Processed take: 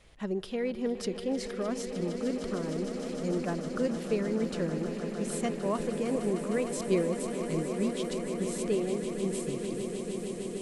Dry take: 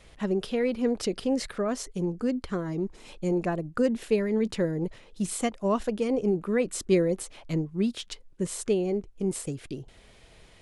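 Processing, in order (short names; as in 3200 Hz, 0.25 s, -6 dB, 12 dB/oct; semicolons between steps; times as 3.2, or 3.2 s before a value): swelling echo 0.153 s, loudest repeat 8, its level -13 dB; warbling echo 0.422 s, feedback 76%, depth 82 cents, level -17 dB; gain -5.5 dB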